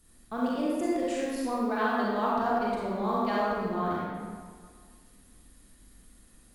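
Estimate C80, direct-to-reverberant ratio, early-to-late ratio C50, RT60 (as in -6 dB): -1.0 dB, -6.5 dB, -3.5 dB, 1.8 s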